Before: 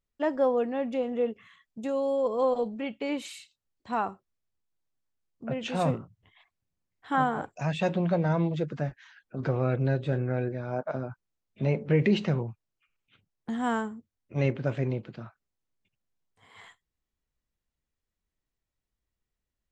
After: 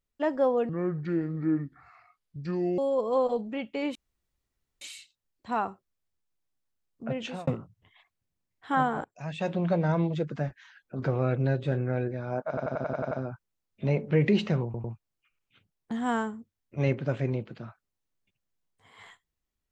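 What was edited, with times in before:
0:00.69–0:02.05: play speed 65%
0:03.22: splice in room tone 0.86 s
0:05.61–0:05.88: fade out
0:07.45–0:08.11: fade in, from −16.5 dB
0:10.89: stutter 0.09 s, 8 plays
0:12.42: stutter 0.10 s, 3 plays

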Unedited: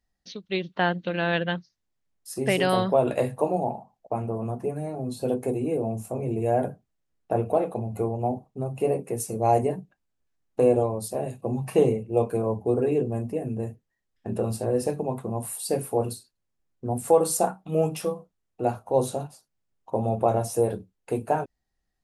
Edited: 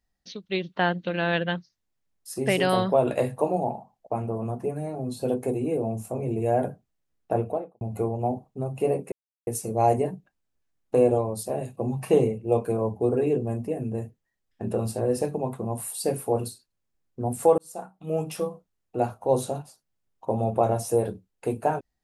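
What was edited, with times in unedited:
0:07.32–0:07.81: fade out and dull
0:09.12: splice in silence 0.35 s
0:17.23–0:18.15: fade in

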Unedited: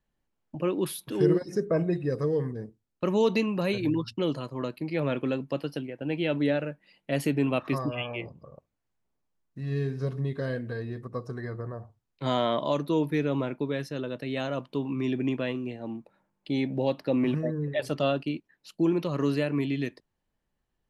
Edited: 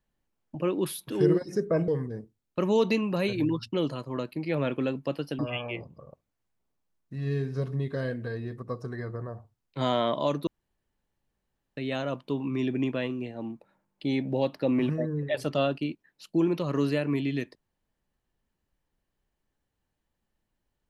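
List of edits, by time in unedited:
0:01.88–0:02.33: remove
0:05.84–0:07.84: remove
0:12.92–0:14.22: fill with room tone

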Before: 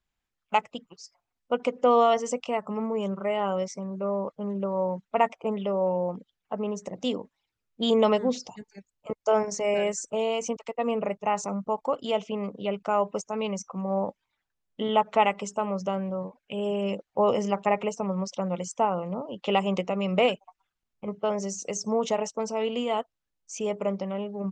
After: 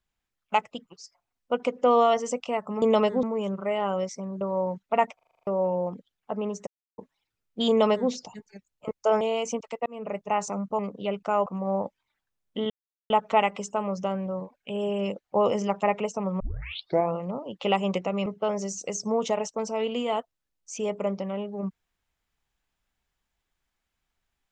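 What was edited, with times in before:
0:04.00–0:04.63: remove
0:05.37: stutter in place 0.04 s, 8 plays
0:06.89–0:07.20: silence
0:07.91–0:08.32: duplicate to 0:02.82
0:09.43–0:10.17: remove
0:10.82–0:11.19: fade in
0:11.75–0:12.39: remove
0:13.06–0:13.69: remove
0:14.93: splice in silence 0.40 s
0:18.23: tape start 0.76 s
0:20.09–0:21.07: remove

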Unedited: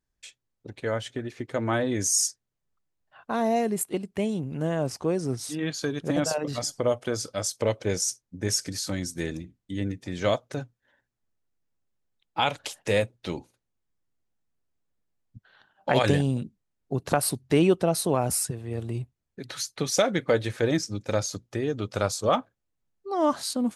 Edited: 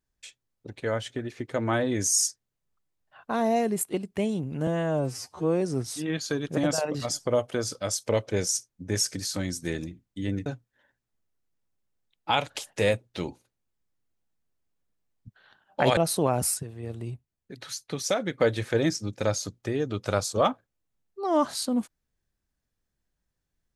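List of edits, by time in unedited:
0:04.67–0:05.14: time-stretch 2×
0:09.99–0:10.55: remove
0:16.06–0:17.85: remove
0:18.42–0:20.26: clip gain −4 dB

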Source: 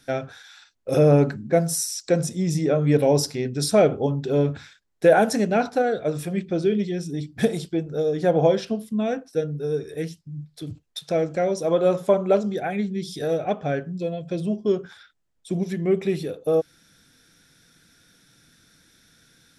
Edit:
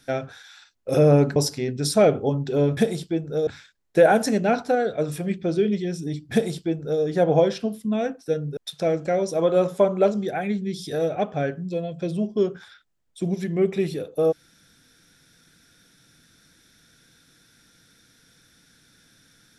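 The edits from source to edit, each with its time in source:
0:01.36–0:03.13: remove
0:07.39–0:08.09: duplicate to 0:04.54
0:09.64–0:10.86: remove

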